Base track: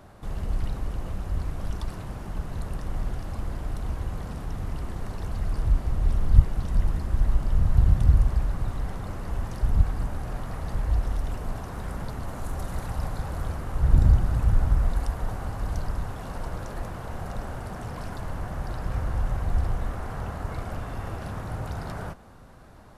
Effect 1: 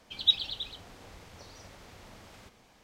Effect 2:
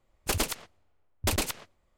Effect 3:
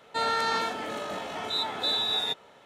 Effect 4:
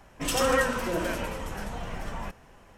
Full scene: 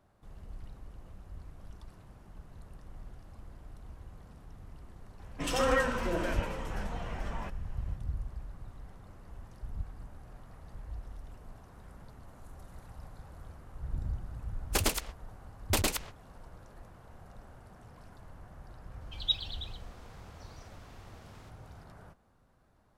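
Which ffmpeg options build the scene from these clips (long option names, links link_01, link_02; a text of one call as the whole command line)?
ffmpeg -i bed.wav -i cue0.wav -i cue1.wav -i cue2.wav -i cue3.wav -filter_complex "[0:a]volume=-18dB[link_01];[4:a]highshelf=frequency=7700:gain=-10.5,atrim=end=2.77,asetpts=PTS-STARTPTS,volume=-3.5dB,afade=type=in:duration=0.004:curve=hsin,afade=type=out:start_time=2.766:duration=0.004:curve=hsin,adelay=5190[link_02];[2:a]atrim=end=1.97,asetpts=PTS-STARTPTS,volume=-1dB,afade=type=in:duration=0.004:curve=hsin,afade=type=out:start_time=1.966:duration=0.004:curve=hsin,adelay=14460[link_03];[1:a]atrim=end=2.83,asetpts=PTS-STARTPTS,volume=-6dB,afade=type=in:duration=0.004:curve=hsin,afade=type=out:start_time=2.826:duration=0.004:curve=hsin,adelay=19010[link_04];[link_01][link_02][link_03][link_04]amix=inputs=4:normalize=0" out.wav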